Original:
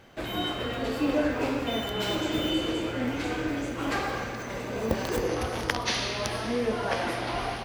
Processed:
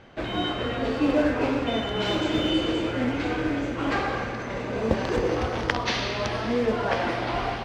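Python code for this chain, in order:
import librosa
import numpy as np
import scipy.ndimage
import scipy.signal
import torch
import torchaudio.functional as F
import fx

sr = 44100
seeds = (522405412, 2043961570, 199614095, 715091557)

y = fx.high_shelf(x, sr, hz=7700.0, db=9.5, at=(2.05, 3.05))
y = fx.mod_noise(y, sr, seeds[0], snr_db=19)
y = fx.air_absorb(y, sr, metres=140.0)
y = F.gain(torch.from_numpy(y), 4.0).numpy()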